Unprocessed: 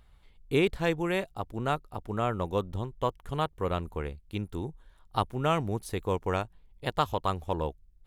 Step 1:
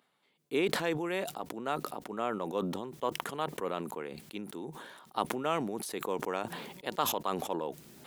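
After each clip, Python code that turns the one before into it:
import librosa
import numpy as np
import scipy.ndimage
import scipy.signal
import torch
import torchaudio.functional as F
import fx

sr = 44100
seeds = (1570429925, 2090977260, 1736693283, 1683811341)

y = scipy.signal.sosfilt(scipy.signal.butter(4, 210.0, 'highpass', fs=sr, output='sos'), x)
y = fx.sustainer(y, sr, db_per_s=41.0)
y = y * 10.0 ** (-4.5 / 20.0)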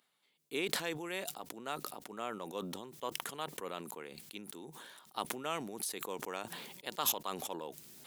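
y = fx.high_shelf(x, sr, hz=2400.0, db=12.0)
y = y * 10.0 ** (-8.5 / 20.0)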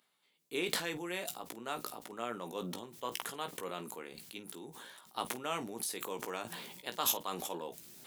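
y = fx.room_early_taps(x, sr, ms=(17, 50), db=(-7.5, -16.5))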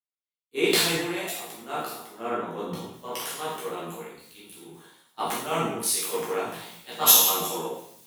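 y = fx.rev_plate(x, sr, seeds[0], rt60_s=1.1, hf_ratio=0.95, predelay_ms=0, drr_db=-7.5)
y = fx.band_widen(y, sr, depth_pct=100)
y = y * 10.0 ** (1.0 / 20.0)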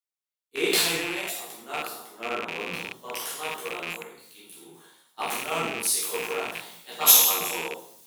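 y = fx.rattle_buzz(x, sr, strikes_db=-43.0, level_db=-19.0)
y = fx.bass_treble(y, sr, bass_db=-6, treble_db=3)
y = y * 10.0 ** (-2.0 / 20.0)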